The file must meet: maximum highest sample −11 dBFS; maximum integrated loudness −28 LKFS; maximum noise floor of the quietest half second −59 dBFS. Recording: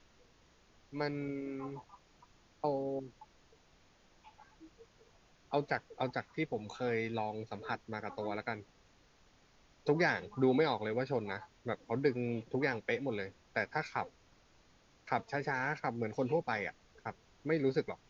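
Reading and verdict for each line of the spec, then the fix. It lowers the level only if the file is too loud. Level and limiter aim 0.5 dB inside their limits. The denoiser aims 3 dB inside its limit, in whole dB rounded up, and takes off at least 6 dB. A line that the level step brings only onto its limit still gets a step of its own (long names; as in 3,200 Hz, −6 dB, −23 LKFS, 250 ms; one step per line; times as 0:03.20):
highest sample −16.5 dBFS: in spec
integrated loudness −36.5 LKFS: in spec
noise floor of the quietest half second −66 dBFS: in spec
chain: no processing needed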